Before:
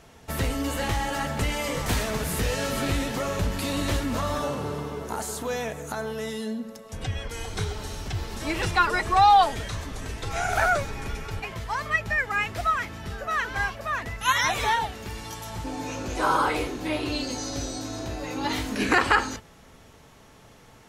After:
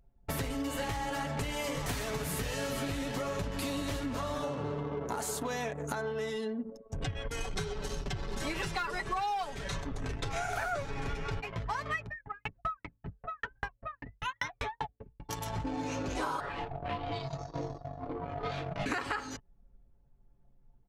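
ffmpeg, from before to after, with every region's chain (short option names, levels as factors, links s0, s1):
-filter_complex "[0:a]asettb=1/sr,asplit=3[s0][s1][s2];[s0]atrim=end=7.404[s3];[s1]atrim=start=7.4:end=9.81,asetpts=PTS-STARTPTS,afade=t=in:d=0.004:c=qsin,afade=t=out:st=2.406:d=0.004:c=qsin,volume=5.31,asoftclip=hard,volume=0.188,aecho=1:1:5.2:0.47,atrim=end_sample=106281[s4];[s2]atrim=start=9.806[s5];[s3][s4]acrossfade=d=0.004:c1=hsin:c2=qsin[s6];[s6][s5]acrossfade=d=0.004:c1=qsin:c2=hsin,asettb=1/sr,asplit=3[s7][s8][s9];[s7]atrim=end=10.734[s10];[s8]atrim=start=10.73:end=11.41,asetpts=PTS-STARTPTS,afade=t=in:d=0.004:c=qsin,afade=t=out:st=0.676:d=0.004:c=qsin,highshelf=f=8400:g=-8.5,acontrast=39[s11];[s9]atrim=start=11.406[s12];[s10][s11]acrossfade=d=0.004:c1=hsin:c2=qsin[s13];[s13][s12]acrossfade=d=0.004:c1=qsin:c2=hsin,asettb=1/sr,asplit=3[s14][s15][s16];[s14]atrim=end=12.064[s17];[s15]atrim=start=12.06:end=15.29,asetpts=PTS-STARTPTS,afade=t=in:d=0.004:c=qsin,afade=t=out:st=3.226:d=0.004:c=qsin,bass=f=250:g=1,treble=f=4000:g=-8,aeval=exprs='val(0)*pow(10,-34*if(lt(mod(5.1*n/s,1),2*abs(5.1)/1000),1-mod(5.1*n/s,1)/(2*abs(5.1)/1000),(mod(5.1*n/s,1)-2*abs(5.1)/1000)/(1-2*abs(5.1)/1000))/20)':c=same[s18];[s16]atrim=start=15.286[s19];[s17][s18]acrossfade=d=0.004:c1=hsin:c2=qsin[s20];[s20][s19]acrossfade=d=0.004:c1=qsin:c2=hsin,asettb=1/sr,asplit=3[s21][s22][s23];[s21]atrim=end=16.404[s24];[s22]atrim=start=16.4:end=18.86,asetpts=PTS-STARTPTS,afade=t=in:d=0.004:c=qsin,afade=t=out:st=2.456:d=0.004:c=qsin,highshelf=f=6200:g=-10.5,flanger=delay=19:depth=4.3:speed=1.6,aeval=exprs='val(0)*sin(2*PI*400*n/s)':c=same[s25];[s23]atrim=start=18.856[s26];[s24][s25]acrossfade=d=0.004:c1=hsin:c2=qsin[s27];[s27][s26]acrossfade=d=0.004:c1=qsin:c2=hsin,anlmdn=2.51,aecho=1:1:7.1:0.43,acompressor=threshold=0.0224:ratio=10,volume=1.19"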